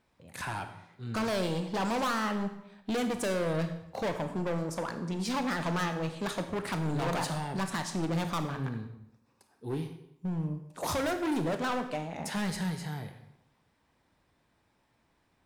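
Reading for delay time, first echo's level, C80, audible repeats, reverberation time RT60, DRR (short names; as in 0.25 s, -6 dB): none, none, 11.5 dB, none, 0.80 s, 7.0 dB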